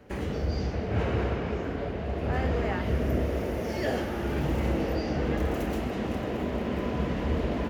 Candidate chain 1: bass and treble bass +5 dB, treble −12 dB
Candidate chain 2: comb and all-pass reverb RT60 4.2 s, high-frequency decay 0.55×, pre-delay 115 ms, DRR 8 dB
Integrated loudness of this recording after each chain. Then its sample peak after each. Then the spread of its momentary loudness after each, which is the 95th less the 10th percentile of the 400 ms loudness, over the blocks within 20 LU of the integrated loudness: −27.0, −29.0 LKFS; −10.5, −13.0 dBFS; 4, 3 LU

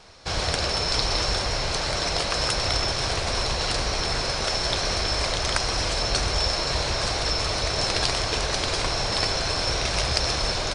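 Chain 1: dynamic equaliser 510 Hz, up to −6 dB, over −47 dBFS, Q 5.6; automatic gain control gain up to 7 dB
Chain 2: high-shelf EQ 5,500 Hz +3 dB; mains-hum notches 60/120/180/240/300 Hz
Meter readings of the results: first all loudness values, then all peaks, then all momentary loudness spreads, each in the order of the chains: −19.0, −23.0 LKFS; −1.0, −1.5 dBFS; 4, 2 LU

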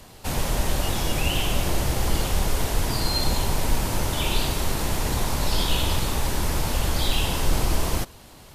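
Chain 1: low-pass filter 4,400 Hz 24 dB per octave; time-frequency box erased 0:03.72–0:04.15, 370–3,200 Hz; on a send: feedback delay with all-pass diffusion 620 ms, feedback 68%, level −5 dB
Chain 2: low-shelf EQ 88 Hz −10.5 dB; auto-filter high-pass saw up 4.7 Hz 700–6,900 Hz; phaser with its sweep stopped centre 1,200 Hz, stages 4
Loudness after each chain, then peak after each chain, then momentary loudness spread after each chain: −25.0, −30.5 LKFS; −6.5, −16.5 dBFS; 3, 2 LU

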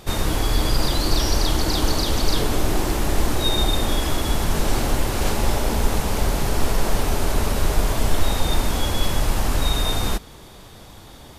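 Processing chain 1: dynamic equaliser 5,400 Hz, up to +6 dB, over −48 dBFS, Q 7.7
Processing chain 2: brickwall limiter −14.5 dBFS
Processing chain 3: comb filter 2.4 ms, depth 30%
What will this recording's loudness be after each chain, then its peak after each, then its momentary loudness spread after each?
−22.5, −26.5, −22.0 LKFS; −5.0, −14.5, −3.0 dBFS; 3, 3, 2 LU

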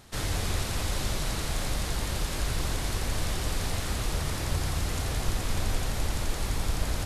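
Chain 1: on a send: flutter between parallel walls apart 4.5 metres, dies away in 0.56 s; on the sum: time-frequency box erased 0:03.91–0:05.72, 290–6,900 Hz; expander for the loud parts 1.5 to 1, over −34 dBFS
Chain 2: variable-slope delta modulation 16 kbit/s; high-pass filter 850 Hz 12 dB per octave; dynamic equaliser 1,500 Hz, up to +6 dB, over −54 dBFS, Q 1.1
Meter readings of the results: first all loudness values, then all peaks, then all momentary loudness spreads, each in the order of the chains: −31.5, −36.0 LKFS; −12.5, −24.0 dBFS; 4, 1 LU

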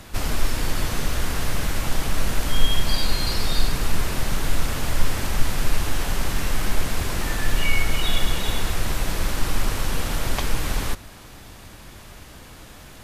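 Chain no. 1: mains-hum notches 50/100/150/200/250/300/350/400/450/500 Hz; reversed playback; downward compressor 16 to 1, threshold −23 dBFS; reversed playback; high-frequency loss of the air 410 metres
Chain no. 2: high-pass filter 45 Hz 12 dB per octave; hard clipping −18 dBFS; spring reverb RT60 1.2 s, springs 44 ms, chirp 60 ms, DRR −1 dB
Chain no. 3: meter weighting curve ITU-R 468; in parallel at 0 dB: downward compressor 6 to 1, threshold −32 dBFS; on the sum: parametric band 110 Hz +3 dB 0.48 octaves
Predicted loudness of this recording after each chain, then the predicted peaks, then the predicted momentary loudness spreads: −37.5, −24.5, −18.0 LKFS; −17.0, −9.0, −2.5 dBFS; 12, 18, 16 LU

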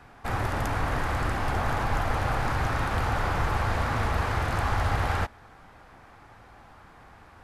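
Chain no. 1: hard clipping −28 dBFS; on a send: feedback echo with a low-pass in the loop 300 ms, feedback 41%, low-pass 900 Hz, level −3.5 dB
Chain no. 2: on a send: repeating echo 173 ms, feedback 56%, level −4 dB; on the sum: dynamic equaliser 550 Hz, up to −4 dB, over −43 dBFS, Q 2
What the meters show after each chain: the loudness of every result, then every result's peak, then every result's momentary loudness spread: −31.0, −26.5 LKFS; −22.0, −12.5 dBFS; 20, 8 LU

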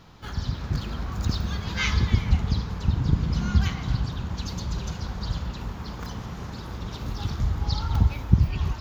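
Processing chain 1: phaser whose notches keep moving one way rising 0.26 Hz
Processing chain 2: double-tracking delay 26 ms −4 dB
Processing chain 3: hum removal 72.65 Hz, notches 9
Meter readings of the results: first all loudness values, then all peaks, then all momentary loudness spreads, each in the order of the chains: −28.0, −26.5, −28.0 LKFS; −3.0, −3.5, −3.0 dBFS; 13, 13, 12 LU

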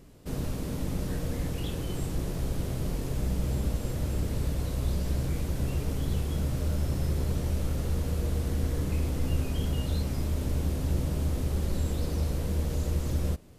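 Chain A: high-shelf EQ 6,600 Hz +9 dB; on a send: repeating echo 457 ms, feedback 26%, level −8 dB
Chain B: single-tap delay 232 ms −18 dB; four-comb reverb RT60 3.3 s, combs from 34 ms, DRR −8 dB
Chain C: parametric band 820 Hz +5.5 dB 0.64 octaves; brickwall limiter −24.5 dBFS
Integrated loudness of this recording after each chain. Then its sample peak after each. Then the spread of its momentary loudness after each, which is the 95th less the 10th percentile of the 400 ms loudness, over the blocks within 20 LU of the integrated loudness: −30.5, −24.0, −34.5 LKFS; −15.0, −9.0, −24.5 dBFS; 2, 3, 1 LU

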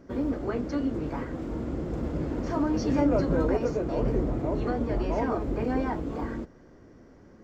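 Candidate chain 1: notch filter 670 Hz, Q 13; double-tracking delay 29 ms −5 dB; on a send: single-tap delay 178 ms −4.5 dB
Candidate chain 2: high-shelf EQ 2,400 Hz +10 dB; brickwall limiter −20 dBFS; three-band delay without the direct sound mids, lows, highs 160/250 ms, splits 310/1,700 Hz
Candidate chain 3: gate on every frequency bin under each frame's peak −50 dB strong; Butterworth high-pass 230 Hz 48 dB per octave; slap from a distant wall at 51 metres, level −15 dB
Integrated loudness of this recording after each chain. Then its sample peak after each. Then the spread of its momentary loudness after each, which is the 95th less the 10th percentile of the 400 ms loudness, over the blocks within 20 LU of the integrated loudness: −26.5, −32.0, −30.0 LKFS; −11.0, −17.0, −13.5 dBFS; 9, 6, 10 LU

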